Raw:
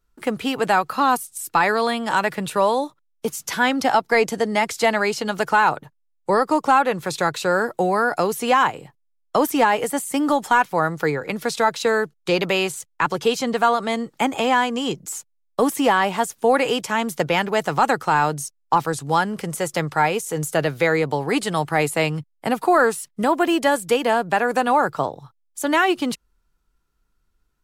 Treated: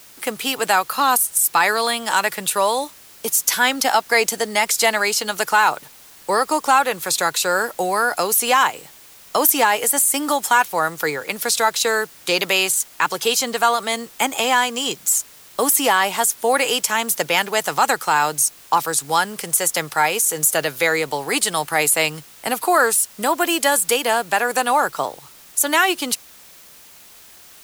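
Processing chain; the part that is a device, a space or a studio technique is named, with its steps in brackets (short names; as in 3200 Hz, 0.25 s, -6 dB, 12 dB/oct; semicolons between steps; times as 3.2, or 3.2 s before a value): turntable without a phono preamp (RIAA curve recording; white noise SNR 25 dB); gain +1 dB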